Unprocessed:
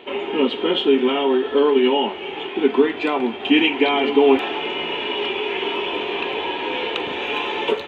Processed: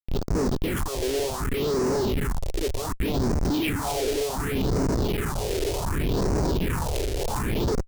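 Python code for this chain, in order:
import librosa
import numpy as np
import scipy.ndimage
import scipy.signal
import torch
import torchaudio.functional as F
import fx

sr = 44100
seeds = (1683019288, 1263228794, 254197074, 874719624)

y = fx.echo_feedback(x, sr, ms=252, feedback_pct=45, wet_db=-8.5)
y = fx.schmitt(y, sr, flips_db=-19.5)
y = fx.phaser_stages(y, sr, stages=4, low_hz=180.0, high_hz=3100.0, hz=0.67, feedback_pct=35)
y = F.gain(torch.from_numpy(y), -4.5).numpy()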